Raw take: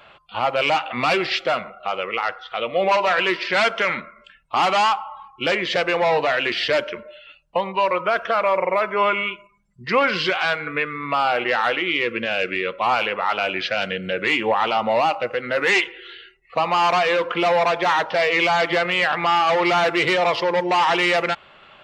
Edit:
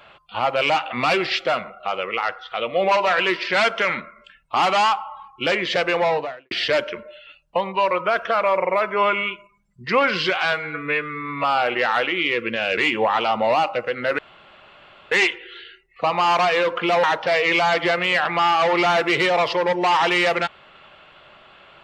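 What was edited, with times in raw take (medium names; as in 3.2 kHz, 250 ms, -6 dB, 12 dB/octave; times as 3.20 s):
5.98–6.51 s: studio fade out
10.52–11.13 s: stretch 1.5×
12.47–14.24 s: delete
15.65 s: insert room tone 0.93 s
17.57–17.91 s: delete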